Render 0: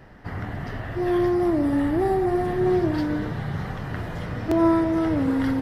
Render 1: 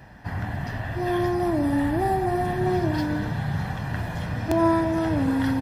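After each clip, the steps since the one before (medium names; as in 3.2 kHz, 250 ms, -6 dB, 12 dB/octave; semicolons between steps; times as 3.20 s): high-pass 46 Hz; treble shelf 4.8 kHz +5.5 dB; comb 1.2 ms, depth 48%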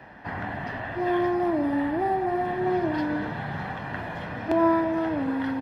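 gain riding within 4 dB 2 s; three-band isolator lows -14 dB, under 220 Hz, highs -17 dB, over 3.5 kHz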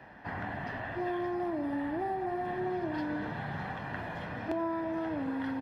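compression, threshold -25 dBFS, peak gain reduction 8.5 dB; trim -5 dB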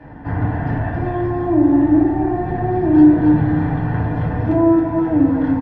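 tilt EQ -3.5 dB/octave; delay 270 ms -6.5 dB; FDN reverb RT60 0.64 s, low-frequency decay 1.4×, high-frequency decay 0.45×, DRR -3.5 dB; trim +4 dB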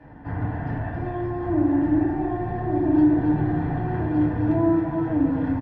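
delay 1160 ms -5 dB; trim -7.5 dB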